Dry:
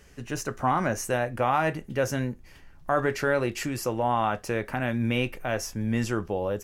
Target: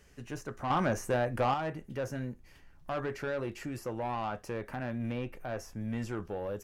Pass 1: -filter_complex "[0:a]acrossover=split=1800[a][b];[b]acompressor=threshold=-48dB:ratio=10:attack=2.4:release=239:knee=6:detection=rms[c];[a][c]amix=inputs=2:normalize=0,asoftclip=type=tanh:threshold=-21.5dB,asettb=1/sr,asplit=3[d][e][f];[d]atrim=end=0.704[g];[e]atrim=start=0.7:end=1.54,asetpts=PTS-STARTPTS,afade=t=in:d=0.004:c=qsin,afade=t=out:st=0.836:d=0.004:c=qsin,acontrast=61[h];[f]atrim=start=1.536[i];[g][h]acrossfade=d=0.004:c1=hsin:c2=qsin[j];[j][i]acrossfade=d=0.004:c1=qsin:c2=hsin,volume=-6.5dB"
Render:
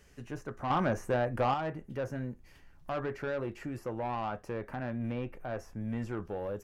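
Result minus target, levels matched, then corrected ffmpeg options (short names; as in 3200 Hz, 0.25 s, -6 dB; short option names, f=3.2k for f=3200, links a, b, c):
compressor: peak gain reduction +8.5 dB
-filter_complex "[0:a]acrossover=split=1800[a][b];[b]acompressor=threshold=-38.5dB:ratio=10:attack=2.4:release=239:knee=6:detection=rms[c];[a][c]amix=inputs=2:normalize=0,asoftclip=type=tanh:threshold=-21.5dB,asettb=1/sr,asplit=3[d][e][f];[d]atrim=end=0.704[g];[e]atrim=start=0.7:end=1.54,asetpts=PTS-STARTPTS,afade=t=in:d=0.004:c=qsin,afade=t=out:st=0.836:d=0.004:c=qsin,acontrast=61[h];[f]atrim=start=1.536[i];[g][h]acrossfade=d=0.004:c1=hsin:c2=qsin[j];[j][i]acrossfade=d=0.004:c1=qsin:c2=hsin,volume=-6.5dB"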